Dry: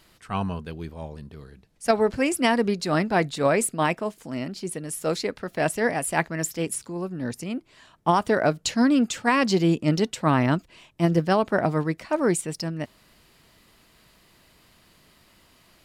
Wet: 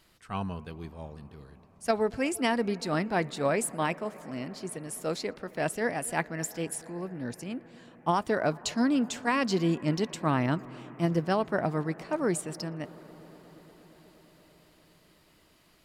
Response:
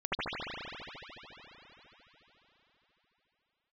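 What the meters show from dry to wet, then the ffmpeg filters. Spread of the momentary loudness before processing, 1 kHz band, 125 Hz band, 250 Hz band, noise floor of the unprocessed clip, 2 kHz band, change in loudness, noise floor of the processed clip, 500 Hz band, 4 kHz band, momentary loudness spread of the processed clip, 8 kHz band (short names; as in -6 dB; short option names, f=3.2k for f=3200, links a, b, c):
12 LU, -6.0 dB, -6.0 dB, -6.0 dB, -59 dBFS, -6.0 dB, -6.0 dB, -62 dBFS, -6.0 dB, -6.0 dB, 13 LU, -6.0 dB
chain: -filter_complex "[0:a]asplit=2[a][b];[1:a]atrim=start_sample=2205,asetrate=27783,aresample=44100,adelay=117[c];[b][c]afir=irnorm=-1:irlink=0,volume=-32.5dB[d];[a][d]amix=inputs=2:normalize=0,volume=-6dB"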